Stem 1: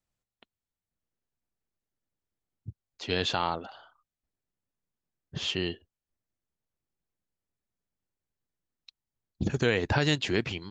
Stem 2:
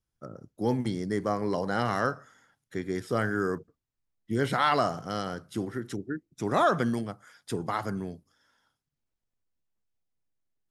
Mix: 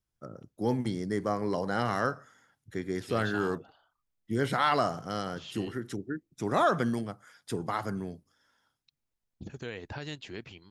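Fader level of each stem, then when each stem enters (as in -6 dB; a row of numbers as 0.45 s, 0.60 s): -14.0 dB, -1.5 dB; 0.00 s, 0.00 s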